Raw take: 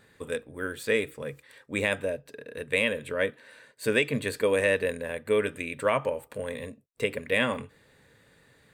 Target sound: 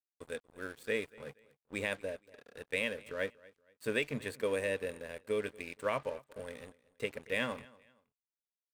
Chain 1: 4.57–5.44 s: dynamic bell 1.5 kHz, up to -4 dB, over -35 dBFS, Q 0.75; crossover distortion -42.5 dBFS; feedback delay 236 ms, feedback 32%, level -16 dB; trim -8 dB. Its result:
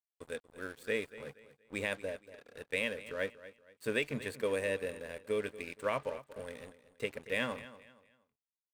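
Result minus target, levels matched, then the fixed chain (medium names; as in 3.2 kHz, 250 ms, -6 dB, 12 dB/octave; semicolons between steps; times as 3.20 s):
echo-to-direct +6.5 dB
4.57–5.44 s: dynamic bell 1.5 kHz, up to -4 dB, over -35 dBFS, Q 0.75; crossover distortion -42.5 dBFS; feedback delay 236 ms, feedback 32%, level -22.5 dB; trim -8 dB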